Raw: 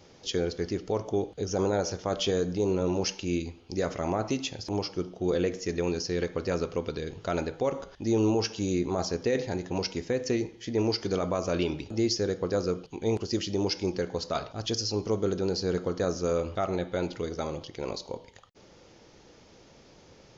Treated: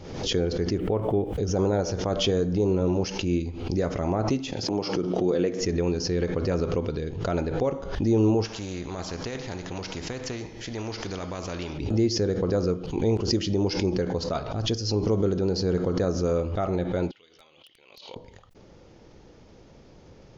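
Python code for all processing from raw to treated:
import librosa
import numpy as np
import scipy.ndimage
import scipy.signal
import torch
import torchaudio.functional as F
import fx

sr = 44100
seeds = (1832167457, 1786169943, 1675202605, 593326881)

y = fx.chain(x, sr, fx.steep_lowpass(hz=3300.0, slope=36),
    fx.quant_dither(seeds[0], bits=12, dither='triangular'), at=(0.78, 1.38))
y = fx.chain(y, sr, fx.highpass(hz=180.0, slope=12),
    fx.pre_swell(db_per_s=32.0), at=(4.52, 5.61))
y = fx.chain(y, sr, fx.comb_fb(f0_hz=150.0, decay_s=1.6, harmonics='all', damping=0.0, mix_pct=40),
    fx.spectral_comp(ratio=2.0), at=(8.45, 11.78))
y = fx.chain(y, sr, fx.bandpass_q(hz=3000.0, q=5.0),
    fx.overflow_wrap(gain_db=39.0), at=(17.11, 18.16))
y = fx.tilt_eq(y, sr, slope=-2.0)
y = fx.pre_swell(y, sr, db_per_s=60.0)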